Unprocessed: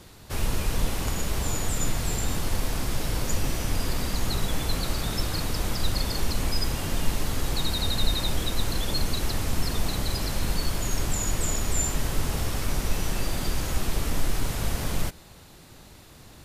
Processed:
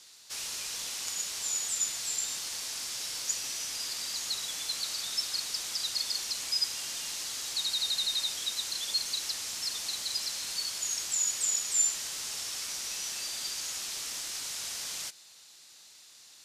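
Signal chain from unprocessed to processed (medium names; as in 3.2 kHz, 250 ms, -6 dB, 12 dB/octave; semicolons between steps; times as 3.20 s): band-pass filter 5.9 kHz, Q 1.3; trim +4.5 dB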